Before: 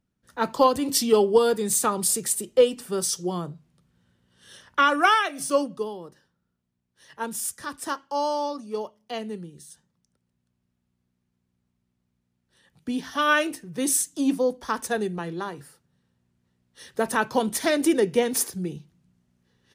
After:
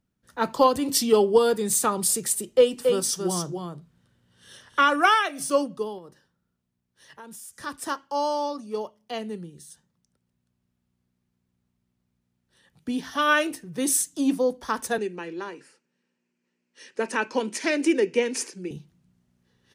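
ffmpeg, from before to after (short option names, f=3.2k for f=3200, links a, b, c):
-filter_complex "[0:a]asettb=1/sr,asplit=3[a][b][c];[a]atrim=end=2.464[d];[b]atrim=start=2.46:end=4.96,asetpts=PTS-STARTPTS,afade=t=in:d=0.004:c=qsin,afade=t=out:st=2.496:d=0.004:c=qsin,aecho=1:1:276:0.562,atrim=end_sample=110250[e];[c]atrim=start=4.956[f];[d][e]acrossfade=d=0.004:c1=hsin:c2=qsin[g];[g][f]acrossfade=d=0.004:c1=qsin:c2=hsin,asettb=1/sr,asplit=3[h][i][j];[h]atrim=end=5.984[k];[i]atrim=start=5.98:end=7.61,asetpts=PTS-STARTPTS,afade=t=in:d=0.004:c=qsin,afade=t=out:st=1.626:d=0.004:c=qsin,acompressor=threshold=-40dB:ratio=6:attack=3.2:release=140:knee=1:detection=peak[l];[j]atrim=start=7.606[m];[k][l]acrossfade=d=0.004:c1=hsin:c2=qsin[n];[n][m]acrossfade=d=0.004:c1=qsin:c2=hsin,asettb=1/sr,asplit=3[o][p][q];[o]atrim=end=14.984[r];[p]atrim=start=14.98:end=18.71,asetpts=PTS-STARTPTS,afade=t=in:d=0.004:c=qsin,afade=t=out:st=3.726:d=0.004:c=qsin,highpass=f=240:w=0.5412,highpass=f=240:w=1.3066,equalizer=f=720:t=q:w=4:g=-10,equalizer=f=1.2k:t=q:w=4:g=-6,equalizer=f=2.5k:t=q:w=4:g=8,equalizer=f=3.6k:t=q:w=4:g=-9,lowpass=f=7.9k:w=0.5412,lowpass=f=7.9k:w=1.3066[s];[q]atrim=start=18.706[t];[r][s]acrossfade=d=0.004:c1=hsin:c2=qsin[u];[u][t]acrossfade=d=0.004:c1=qsin:c2=hsin"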